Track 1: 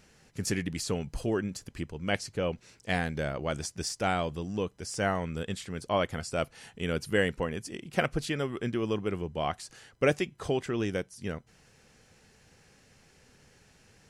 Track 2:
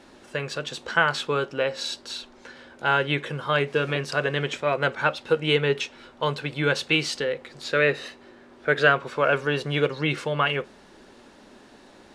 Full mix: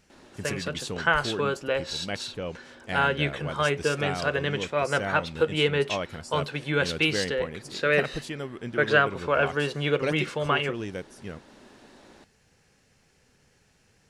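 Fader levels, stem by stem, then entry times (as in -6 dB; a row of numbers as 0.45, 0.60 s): -3.5, -2.0 dB; 0.00, 0.10 s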